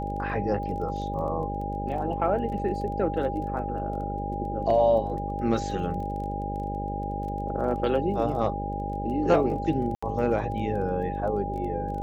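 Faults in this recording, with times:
buzz 50 Hz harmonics 12 -33 dBFS
crackle 16 per s -37 dBFS
whine 810 Hz -32 dBFS
9.95–10.03 s: dropout 75 ms

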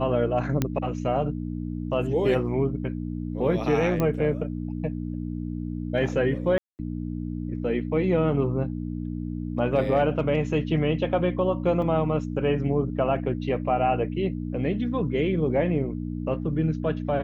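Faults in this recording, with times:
hum 60 Hz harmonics 5 -31 dBFS
0.62 s: pop -10 dBFS
4.00 s: pop -13 dBFS
6.58–6.79 s: dropout 209 ms
11.82 s: dropout 2.2 ms

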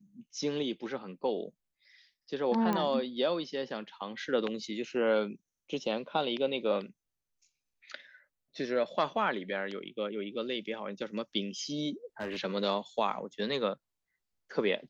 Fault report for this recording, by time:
2.73 s: pop -18 dBFS
12.20–12.39 s: clipped -31.5 dBFS

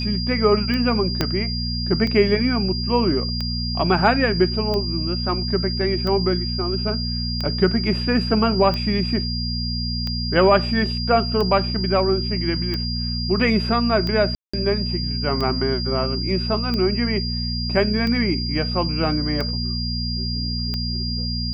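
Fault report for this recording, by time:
hum 60 Hz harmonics 4 -26 dBFS
tick 45 rpm -14 dBFS
whine 4.8 kHz -27 dBFS
1.21 s: pop -5 dBFS
14.35–14.54 s: dropout 185 ms

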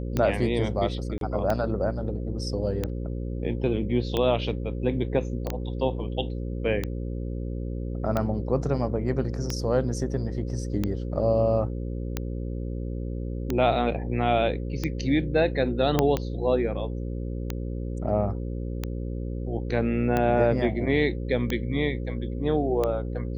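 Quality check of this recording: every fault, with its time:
buzz 60 Hz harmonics 9 -31 dBFS
tick 45 rpm -13 dBFS
1.18–1.21 s: dropout 32 ms
5.47 s: pop -18 dBFS
15.99 s: pop -7 dBFS

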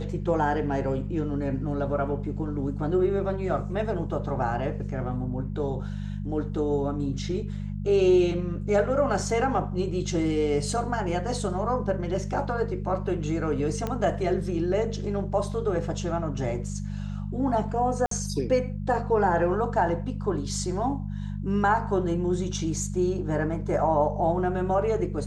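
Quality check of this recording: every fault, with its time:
hum 50 Hz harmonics 4 -32 dBFS
13.87 s: pop -16 dBFS
18.06–18.11 s: dropout 53 ms

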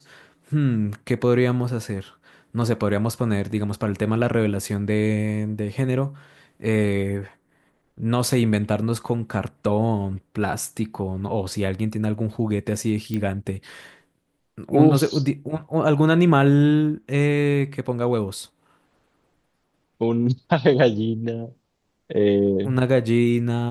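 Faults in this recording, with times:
13.14 s: pop -16 dBFS

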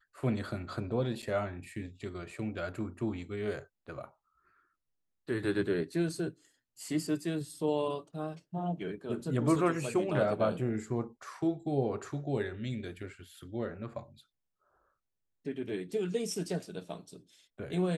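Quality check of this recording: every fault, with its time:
1.22–1.23 s: dropout 6.9 ms

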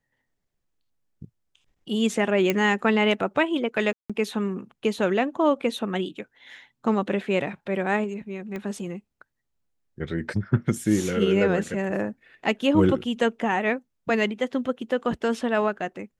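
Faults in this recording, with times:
2.50 s: pop -9 dBFS
3.93–4.10 s: dropout 166 ms
8.56 s: pop -21 dBFS

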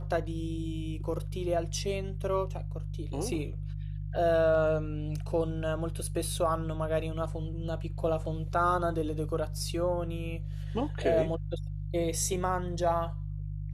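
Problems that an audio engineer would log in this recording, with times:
hum 50 Hz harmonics 3 -36 dBFS

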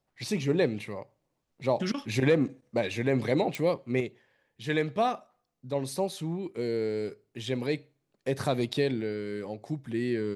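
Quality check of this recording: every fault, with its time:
3.55 s: pop

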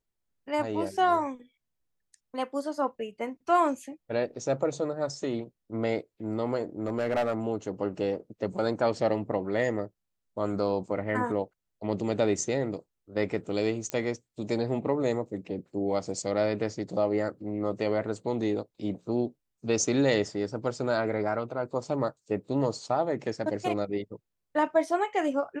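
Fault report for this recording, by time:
6.86–7.34 s: clipped -22 dBFS
13.90 s: pop -16 dBFS

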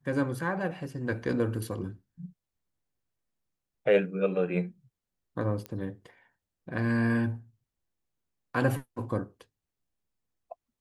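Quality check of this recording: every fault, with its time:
5.66 s: pop -23 dBFS

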